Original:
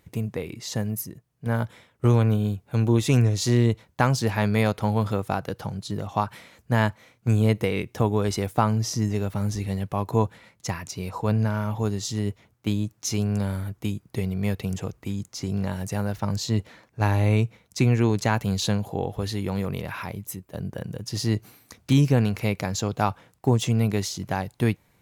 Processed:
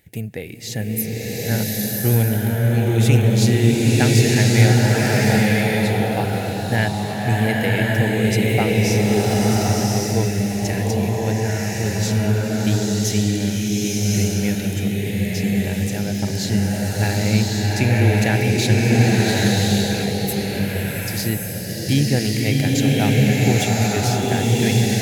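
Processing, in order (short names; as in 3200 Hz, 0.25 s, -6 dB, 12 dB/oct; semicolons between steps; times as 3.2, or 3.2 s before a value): EQ curve 800 Hz 0 dB, 1100 Hz -18 dB, 1700 Hz +6 dB, 5900 Hz +2 dB, 12000 Hz +8 dB; bloom reverb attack 1.13 s, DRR -5.5 dB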